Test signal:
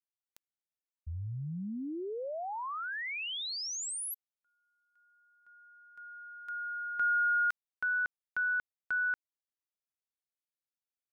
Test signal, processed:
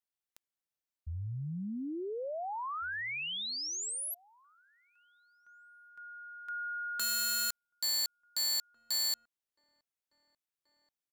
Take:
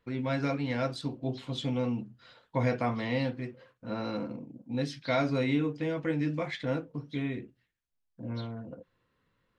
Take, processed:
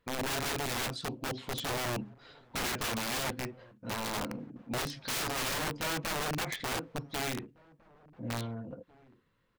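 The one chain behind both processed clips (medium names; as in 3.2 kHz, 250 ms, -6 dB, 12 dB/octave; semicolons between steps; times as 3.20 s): integer overflow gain 28.5 dB; echo from a far wall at 300 m, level -23 dB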